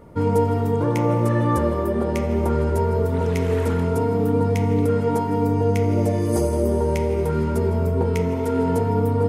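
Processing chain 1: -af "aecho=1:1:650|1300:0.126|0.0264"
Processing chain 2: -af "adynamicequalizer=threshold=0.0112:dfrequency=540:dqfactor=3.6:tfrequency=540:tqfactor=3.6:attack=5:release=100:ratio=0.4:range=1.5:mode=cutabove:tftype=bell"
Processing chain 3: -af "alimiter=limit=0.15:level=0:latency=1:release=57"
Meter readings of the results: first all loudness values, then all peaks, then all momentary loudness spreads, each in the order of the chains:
-21.0 LUFS, -21.5 LUFS, -25.0 LUFS; -7.0 dBFS, -7.5 dBFS, -16.5 dBFS; 2 LU, 2 LU, 1 LU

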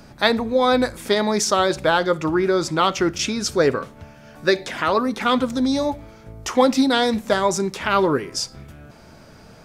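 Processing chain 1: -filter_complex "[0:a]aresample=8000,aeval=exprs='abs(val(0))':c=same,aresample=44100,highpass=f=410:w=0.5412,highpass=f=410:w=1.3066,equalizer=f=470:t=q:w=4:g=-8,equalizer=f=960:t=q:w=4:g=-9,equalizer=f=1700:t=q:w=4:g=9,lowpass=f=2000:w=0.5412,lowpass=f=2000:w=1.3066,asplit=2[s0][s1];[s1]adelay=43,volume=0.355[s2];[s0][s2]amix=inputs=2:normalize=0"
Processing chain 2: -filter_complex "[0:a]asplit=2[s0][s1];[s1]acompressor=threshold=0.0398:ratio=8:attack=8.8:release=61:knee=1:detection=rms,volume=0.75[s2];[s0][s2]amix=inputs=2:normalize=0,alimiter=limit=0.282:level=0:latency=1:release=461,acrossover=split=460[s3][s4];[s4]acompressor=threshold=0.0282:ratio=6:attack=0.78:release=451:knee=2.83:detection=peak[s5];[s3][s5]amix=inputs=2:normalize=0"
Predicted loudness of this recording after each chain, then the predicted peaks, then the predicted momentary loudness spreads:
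-26.5 LUFS, -26.5 LUFS; -8.5 dBFS, -12.0 dBFS; 8 LU, 15 LU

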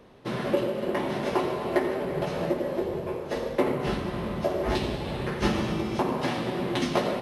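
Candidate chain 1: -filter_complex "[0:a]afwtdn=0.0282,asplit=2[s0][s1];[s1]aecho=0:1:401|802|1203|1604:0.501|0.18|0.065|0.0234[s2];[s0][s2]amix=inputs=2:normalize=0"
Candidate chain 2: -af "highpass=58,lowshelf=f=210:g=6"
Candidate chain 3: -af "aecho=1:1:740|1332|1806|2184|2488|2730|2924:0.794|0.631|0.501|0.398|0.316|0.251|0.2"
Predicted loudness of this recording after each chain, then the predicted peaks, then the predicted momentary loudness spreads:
-28.0 LUFS, -27.0 LUFS, -25.0 LUFS; -9.5 dBFS, -9.0 dBFS, -9.5 dBFS; 4 LU, 4 LU, 4 LU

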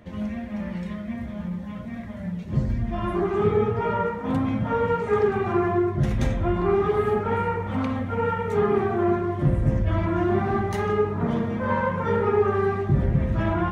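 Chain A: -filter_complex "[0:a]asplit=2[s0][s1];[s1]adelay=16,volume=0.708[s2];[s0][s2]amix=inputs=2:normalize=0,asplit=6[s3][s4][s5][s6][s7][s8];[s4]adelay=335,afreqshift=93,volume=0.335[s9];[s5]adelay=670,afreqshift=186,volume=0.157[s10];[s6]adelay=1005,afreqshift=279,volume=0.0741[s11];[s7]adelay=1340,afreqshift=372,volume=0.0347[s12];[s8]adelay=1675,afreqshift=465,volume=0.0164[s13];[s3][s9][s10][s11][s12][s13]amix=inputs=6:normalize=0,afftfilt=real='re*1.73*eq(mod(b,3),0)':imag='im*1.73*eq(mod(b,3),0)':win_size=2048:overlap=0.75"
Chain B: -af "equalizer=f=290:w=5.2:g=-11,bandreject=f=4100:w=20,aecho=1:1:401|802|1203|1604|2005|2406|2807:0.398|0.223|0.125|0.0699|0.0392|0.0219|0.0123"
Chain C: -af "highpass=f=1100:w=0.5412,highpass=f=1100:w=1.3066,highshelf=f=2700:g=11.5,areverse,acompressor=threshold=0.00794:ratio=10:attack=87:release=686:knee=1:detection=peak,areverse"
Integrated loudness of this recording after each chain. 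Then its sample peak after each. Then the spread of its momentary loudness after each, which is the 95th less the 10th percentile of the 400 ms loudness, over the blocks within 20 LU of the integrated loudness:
-25.0 LUFS, -24.5 LUFS, -43.0 LUFS; -7.5 dBFS, -9.0 dBFS, -26.0 dBFS; 11 LU, 10 LU, 4 LU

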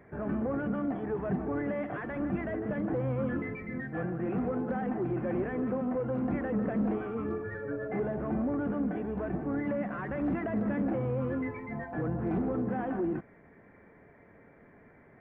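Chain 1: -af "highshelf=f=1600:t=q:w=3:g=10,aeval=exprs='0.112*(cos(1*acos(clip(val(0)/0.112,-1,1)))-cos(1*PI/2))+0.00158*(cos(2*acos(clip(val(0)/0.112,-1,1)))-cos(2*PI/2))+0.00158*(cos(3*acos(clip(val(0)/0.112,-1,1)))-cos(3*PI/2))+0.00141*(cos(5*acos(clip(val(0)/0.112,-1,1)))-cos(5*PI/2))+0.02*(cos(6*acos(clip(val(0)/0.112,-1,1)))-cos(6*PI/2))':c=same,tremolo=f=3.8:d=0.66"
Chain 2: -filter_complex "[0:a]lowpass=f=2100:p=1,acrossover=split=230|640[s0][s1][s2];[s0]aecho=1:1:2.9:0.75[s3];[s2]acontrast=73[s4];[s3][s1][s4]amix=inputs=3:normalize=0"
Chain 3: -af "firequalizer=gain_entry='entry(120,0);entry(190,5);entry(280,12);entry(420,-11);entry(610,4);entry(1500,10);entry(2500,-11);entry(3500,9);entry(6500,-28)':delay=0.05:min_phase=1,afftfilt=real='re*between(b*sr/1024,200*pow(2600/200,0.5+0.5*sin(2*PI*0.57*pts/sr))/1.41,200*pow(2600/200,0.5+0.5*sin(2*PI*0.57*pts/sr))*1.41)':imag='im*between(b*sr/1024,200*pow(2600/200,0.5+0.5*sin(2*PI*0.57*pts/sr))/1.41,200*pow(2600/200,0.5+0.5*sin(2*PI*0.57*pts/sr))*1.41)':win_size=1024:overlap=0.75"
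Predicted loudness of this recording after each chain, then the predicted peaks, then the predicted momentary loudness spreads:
-34.0 LUFS, -32.0 LUFS, -30.5 LUFS; -20.0 dBFS, -19.0 dBFS, -14.5 dBFS; 20 LU, 4 LU, 20 LU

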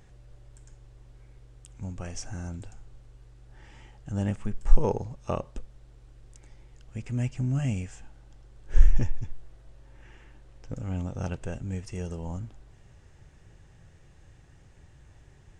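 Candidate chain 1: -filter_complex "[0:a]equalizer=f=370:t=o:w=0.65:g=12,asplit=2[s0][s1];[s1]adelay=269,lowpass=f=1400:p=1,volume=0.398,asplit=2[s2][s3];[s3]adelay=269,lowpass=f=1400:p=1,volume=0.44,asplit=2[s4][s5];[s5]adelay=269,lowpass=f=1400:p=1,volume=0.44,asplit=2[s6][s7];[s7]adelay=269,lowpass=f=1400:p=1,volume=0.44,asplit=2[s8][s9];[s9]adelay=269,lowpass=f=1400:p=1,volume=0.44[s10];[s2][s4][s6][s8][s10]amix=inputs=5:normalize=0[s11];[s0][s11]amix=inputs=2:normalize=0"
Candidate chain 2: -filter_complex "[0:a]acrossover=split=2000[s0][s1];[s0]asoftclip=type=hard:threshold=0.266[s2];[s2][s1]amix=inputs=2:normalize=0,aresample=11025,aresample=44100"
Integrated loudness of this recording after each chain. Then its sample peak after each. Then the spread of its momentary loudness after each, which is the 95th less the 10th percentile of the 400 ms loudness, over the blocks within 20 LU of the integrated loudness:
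-30.5 LUFS, -33.0 LUFS; -3.5 dBFS, -11.0 dBFS; 21 LU, 15 LU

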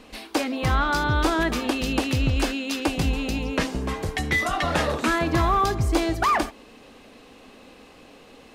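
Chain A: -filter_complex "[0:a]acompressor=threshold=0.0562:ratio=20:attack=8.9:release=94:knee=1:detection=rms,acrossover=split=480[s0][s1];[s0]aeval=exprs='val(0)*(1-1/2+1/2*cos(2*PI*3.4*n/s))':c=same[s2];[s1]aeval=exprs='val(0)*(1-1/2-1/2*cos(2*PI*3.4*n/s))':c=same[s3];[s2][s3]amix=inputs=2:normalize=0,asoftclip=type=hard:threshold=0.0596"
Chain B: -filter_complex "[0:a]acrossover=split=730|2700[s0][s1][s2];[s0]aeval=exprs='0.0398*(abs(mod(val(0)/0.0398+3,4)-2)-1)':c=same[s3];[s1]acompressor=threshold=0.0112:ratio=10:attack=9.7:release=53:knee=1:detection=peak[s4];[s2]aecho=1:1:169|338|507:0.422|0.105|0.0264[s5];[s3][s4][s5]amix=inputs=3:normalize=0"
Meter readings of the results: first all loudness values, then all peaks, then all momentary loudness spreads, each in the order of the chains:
-34.5 LUFS, -30.0 LUFS; -24.5 dBFS, -13.5 dBFS; 20 LU, 20 LU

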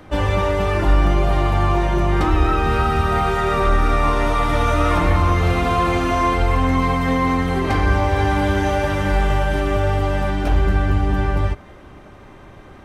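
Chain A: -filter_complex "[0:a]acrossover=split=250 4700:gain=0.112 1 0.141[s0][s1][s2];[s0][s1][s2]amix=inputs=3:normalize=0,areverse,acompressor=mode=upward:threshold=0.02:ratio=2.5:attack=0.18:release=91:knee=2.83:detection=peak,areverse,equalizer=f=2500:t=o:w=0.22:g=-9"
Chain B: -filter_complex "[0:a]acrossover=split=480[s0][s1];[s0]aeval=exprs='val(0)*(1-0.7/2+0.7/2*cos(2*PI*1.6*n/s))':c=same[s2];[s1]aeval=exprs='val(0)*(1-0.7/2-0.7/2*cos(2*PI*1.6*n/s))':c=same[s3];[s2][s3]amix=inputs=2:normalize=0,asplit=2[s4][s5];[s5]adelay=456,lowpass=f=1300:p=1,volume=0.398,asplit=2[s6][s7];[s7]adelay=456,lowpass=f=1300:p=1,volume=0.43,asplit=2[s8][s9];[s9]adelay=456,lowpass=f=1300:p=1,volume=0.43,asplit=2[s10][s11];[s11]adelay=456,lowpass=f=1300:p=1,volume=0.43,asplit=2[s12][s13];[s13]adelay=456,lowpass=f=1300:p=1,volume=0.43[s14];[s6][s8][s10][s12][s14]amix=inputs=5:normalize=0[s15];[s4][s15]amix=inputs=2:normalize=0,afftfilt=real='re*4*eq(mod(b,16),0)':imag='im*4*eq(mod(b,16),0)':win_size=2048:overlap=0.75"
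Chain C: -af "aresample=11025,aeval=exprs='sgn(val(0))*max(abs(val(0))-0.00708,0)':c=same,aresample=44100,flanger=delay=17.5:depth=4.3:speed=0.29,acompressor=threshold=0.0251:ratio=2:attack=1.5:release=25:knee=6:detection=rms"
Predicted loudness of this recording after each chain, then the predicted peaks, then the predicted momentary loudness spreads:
-22.0 LUFS, -23.5 LUFS, -30.0 LUFS; -8.0 dBFS, -8.0 dBFS, -18.0 dBFS; 6 LU, 19 LU, 2 LU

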